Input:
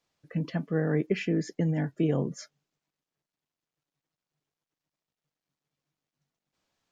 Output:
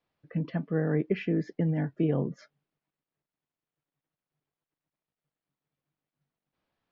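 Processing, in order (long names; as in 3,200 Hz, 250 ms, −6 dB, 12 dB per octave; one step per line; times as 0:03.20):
high-frequency loss of the air 270 metres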